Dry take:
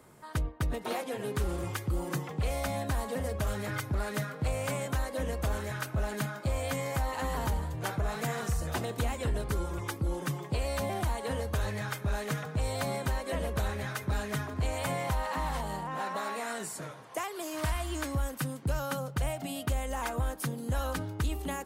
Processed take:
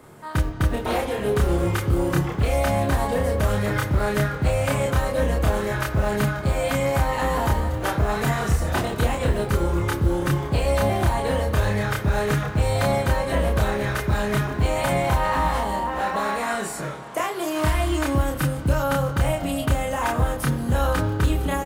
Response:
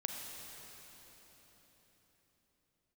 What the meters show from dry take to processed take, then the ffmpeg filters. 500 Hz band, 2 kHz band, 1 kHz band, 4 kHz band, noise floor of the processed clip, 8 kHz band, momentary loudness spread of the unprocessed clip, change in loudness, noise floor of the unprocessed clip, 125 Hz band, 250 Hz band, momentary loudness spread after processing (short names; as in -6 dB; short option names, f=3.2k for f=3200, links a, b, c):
+11.5 dB, +10.0 dB, +11.0 dB, +8.5 dB, -31 dBFS, +6.0 dB, 3 LU, +10.5 dB, -44 dBFS, +10.5 dB, +11.5 dB, 3 LU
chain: -filter_complex "[0:a]acrusher=bits=8:mode=log:mix=0:aa=0.000001,asplit=2[a][b];[b]adelay=29,volume=-2dB[c];[a][c]amix=inputs=2:normalize=0,asplit=2[d][e];[1:a]atrim=start_sample=2205,asetrate=79380,aresample=44100,lowpass=4.2k[f];[e][f]afir=irnorm=-1:irlink=0,volume=0.5dB[g];[d][g]amix=inputs=2:normalize=0,volume=4.5dB"